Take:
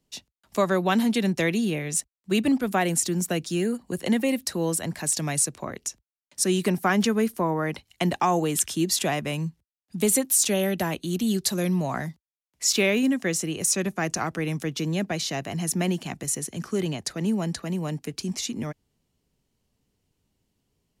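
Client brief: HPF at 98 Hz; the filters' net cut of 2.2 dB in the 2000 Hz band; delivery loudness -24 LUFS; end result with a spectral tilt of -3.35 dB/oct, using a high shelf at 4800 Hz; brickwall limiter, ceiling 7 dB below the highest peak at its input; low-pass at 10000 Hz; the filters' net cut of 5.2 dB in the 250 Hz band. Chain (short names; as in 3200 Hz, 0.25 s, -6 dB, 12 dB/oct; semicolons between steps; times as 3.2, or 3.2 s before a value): HPF 98 Hz; LPF 10000 Hz; bell 250 Hz -7 dB; bell 2000 Hz -3.5 dB; high shelf 4800 Hz +4.5 dB; gain +4.5 dB; limiter -11 dBFS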